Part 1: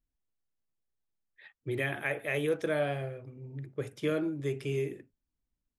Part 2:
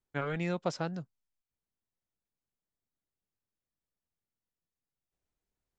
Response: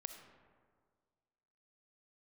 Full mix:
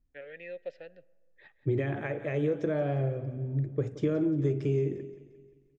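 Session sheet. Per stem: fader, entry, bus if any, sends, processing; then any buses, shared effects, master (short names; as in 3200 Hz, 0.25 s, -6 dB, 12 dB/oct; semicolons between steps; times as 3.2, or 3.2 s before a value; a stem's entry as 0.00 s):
+1.5 dB, 0.00 s, send -9 dB, echo send -13.5 dB, compressor 4:1, threshold -33 dBFS, peak gain reduction 8 dB; steep low-pass 7200 Hz 48 dB/oct; low shelf 480 Hz +8.5 dB
-2.0 dB, 0.00 s, send -12.5 dB, no echo send, vowel filter e; band shelf 2800 Hz +13.5 dB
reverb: on, RT60 1.8 s, pre-delay 20 ms
echo: feedback echo 0.175 s, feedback 49%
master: bell 3200 Hz -9 dB 2.3 oct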